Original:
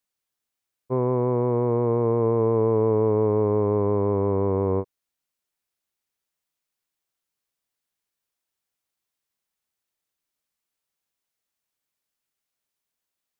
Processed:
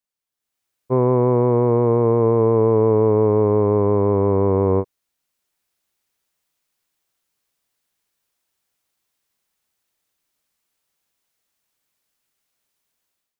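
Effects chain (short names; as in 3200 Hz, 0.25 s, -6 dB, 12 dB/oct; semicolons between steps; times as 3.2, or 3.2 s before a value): AGC gain up to 13 dB; gain -4.5 dB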